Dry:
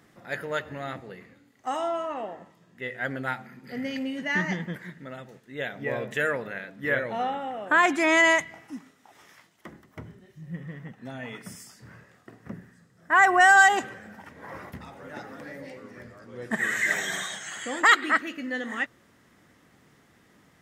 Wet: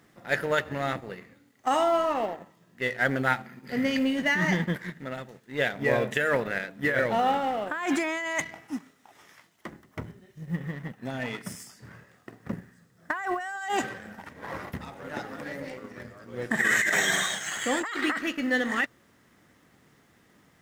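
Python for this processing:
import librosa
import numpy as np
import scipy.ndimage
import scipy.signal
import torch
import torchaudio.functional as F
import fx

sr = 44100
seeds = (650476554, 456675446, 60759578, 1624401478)

y = fx.law_mismatch(x, sr, coded='A')
y = fx.over_compress(y, sr, threshold_db=-29.0, ratio=-1.0)
y = y * librosa.db_to_amplitude(3.0)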